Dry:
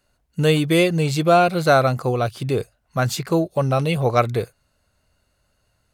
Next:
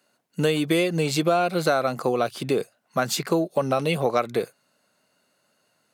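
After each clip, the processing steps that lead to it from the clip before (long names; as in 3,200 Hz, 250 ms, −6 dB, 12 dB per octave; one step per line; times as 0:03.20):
high-pass filter 180 Hz 24 dB per octave
downward compressor 6 to 1, threshold −20 dBFS, peak gain reduction 10 dB
level +2 dB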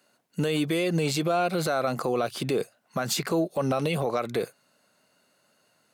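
brickwall limiter −18.5 dBFS, peak gain reduction 10 dB
level +1.5 dB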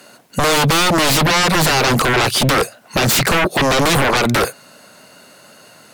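sine wavefolder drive 13 dB, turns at −16.5 dBFS
level +5.5 dB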